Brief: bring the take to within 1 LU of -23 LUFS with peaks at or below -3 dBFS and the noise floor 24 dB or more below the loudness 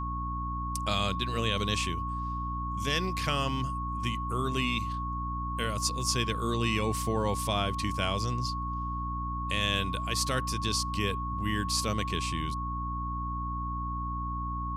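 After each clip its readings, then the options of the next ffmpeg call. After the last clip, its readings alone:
hum 60 Hz; highest harmonic 300 Hz; hum level -33 dBFS; steady tone 1.1 kHz; tone level -34 dBFS; loudness -31.0 LUFS; peak level -14.5 dBFS; loudness target -23.0 LUFS
-> -af "bandreject=f=60:t=h:w=6,bandreject=f=120:t=h:w=6,bandreject=f=180:t=h:w=6,bandreject=f=240:t=h:w=6,bandreject=f=300:t=h:w=6"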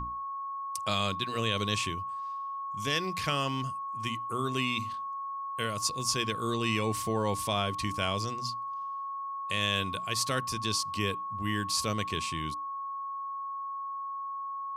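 hum not found; steady tone 1.1 kHz; tone level -34 dBFS
-> -af "bandreject=f=1100:w=30"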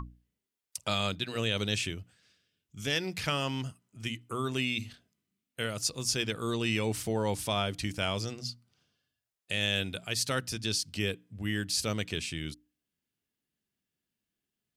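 steady tone not found; loudness -32.0 LUFS; peak level -15.5 dBFS; loudness target -23.0 LUFS
-> -af "volume=2.82"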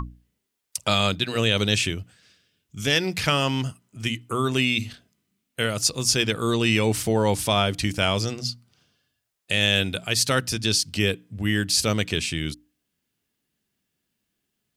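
loudness -23.0 LUFS; peak level -6.5 dBFS; noise floor -79 dBFS

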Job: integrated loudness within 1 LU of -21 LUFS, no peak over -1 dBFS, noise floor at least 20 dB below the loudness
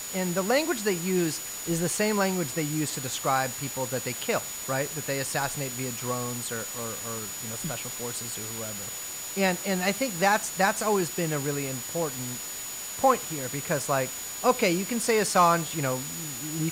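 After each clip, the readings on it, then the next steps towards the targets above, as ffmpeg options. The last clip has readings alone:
steady tone 6.9 kHz; tone level -37 dBFS; noise floor -37 dBFS; noise floor target -48 dBFS; loudness -27.5 LUFS; peak level -10.0 dBFS; loudness target -21.0 LUFS
-> -af "bandreject=f=6900:w=30"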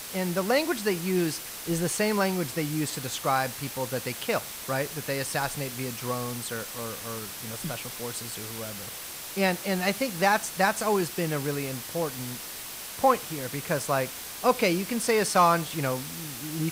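steady tone not found; noise floor -39 dBFS; noise floor target -48 dBFS
-> -af "afftdn=nr=9:nf=-39"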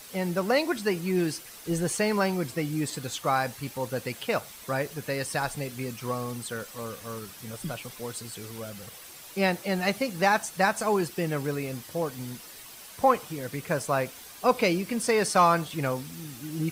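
noise floor -46 dBFS; noise floor target -49 dBFS
-> -af "afftdn=nr=6:nf=-46"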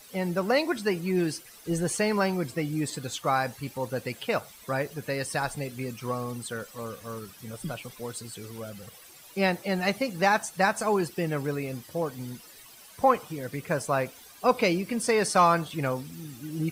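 noise floor -51 dBFS; loudness -28.5 LUFS; peak level -10.0 dBFS; loudness target -21.0 LUFS
-> -af "volume=2.37"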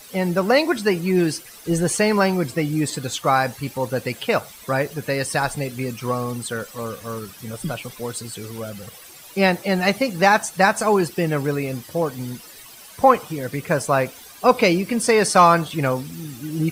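loudness -21.0 LUFS; peak level -2.5 dBFS; noise floor -43 dBFS

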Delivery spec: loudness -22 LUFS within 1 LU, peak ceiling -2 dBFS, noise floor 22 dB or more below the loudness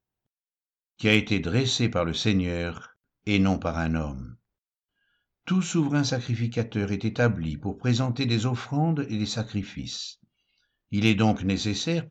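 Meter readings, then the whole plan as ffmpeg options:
loudness -26.0 LUFS; peak level -8.0 dBFS; loudness target -22.0 LUFS
-> -af "volume=1.58"

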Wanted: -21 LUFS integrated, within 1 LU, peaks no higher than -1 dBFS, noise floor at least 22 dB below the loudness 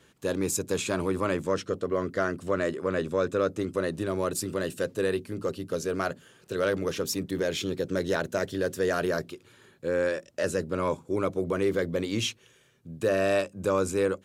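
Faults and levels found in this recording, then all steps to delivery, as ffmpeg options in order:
loudness -29.0 LUFS; peak level -12.0 dBFS; loudness target -21.0 LUFS
-> -af "volume=2.51"

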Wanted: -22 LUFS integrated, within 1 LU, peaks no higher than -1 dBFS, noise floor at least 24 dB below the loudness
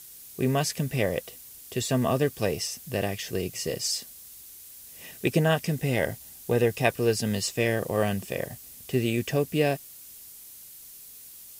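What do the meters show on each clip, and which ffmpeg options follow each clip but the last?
noise floor -47 dBFS; noise floor target -52 dBFS; loudness -27.5 LUFS; peak level -8.5 dBFS; loudness target -22.0 LUFS
-> -af "afftdn=nr=6:nf=-47"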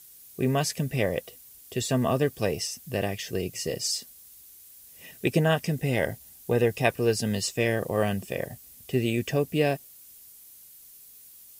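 noise floor -51 dBFS; noise floor target -52 dBFS
-> -af "afftdn=nr=6:nf=-51"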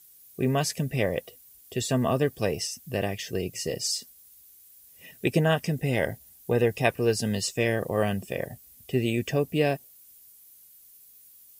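noise floor -54 dBFS; loudness -27.5 LUFS; peak level -8.5 dBFS; loudness target -22.0 LUFS
-> -af "volume=1.88"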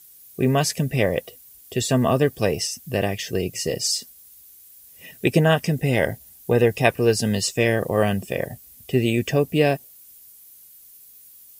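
loudness -22.0 LUFS; peak level -3.0 dBFS; noise floor -49 dBFS

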